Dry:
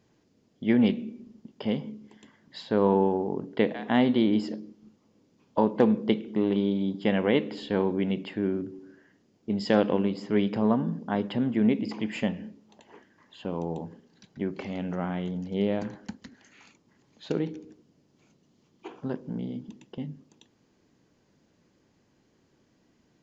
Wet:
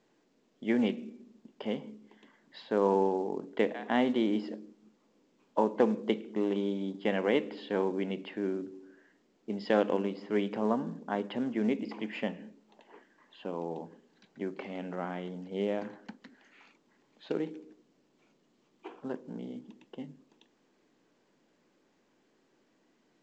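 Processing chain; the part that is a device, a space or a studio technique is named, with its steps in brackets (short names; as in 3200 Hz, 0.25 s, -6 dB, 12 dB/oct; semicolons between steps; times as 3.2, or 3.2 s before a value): telephone (BPF 270–3300 Hz; gain -2.5 dB; µ-law 128 kbps 16000 Hz)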